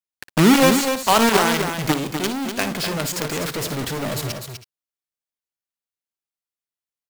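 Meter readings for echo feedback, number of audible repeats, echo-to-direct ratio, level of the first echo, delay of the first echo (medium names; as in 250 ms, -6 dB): no regular repeats, 3, -5.5 dB, -12.5 dB, 58 ms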